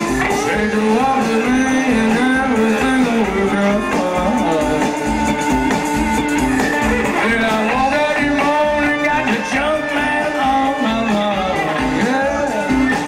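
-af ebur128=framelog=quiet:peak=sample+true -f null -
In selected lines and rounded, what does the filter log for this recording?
Integrated loudness:
  I:         -15.9 LUFS
  Threshold: -25.9 LUFS
Loudness range:
  LRA:         1.5 LU
  Threshold: -35.8 LUFS
  LRA low:   -16.6 LUFS
  LRA high:  -15.0 LUFS
Sample peak:
  Peak:       -6.9 dBFS
True peak:
  Peak:       -6.9 dBFS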